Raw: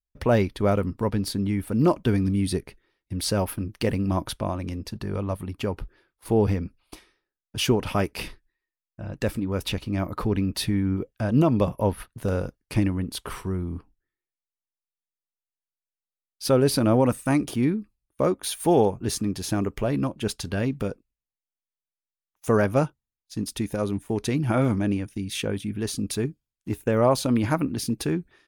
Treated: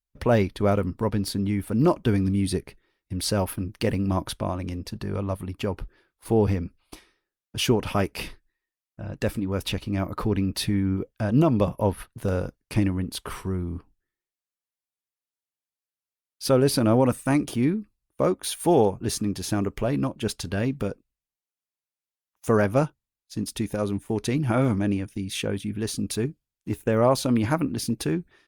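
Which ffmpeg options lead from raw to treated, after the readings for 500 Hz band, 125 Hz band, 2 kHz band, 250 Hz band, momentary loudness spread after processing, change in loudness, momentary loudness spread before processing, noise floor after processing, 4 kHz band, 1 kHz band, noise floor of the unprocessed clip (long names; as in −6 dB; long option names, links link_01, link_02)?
0.0 dB, 0.0 dB, 0.0 dB, 0.0 dB, 11 LU, 0.0 dB, 11 LU, below −85 dBFS, 0.0 dB, 0.0 dB, below −85 dBFS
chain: -ar 48000 -c:a libopus -b:a 64k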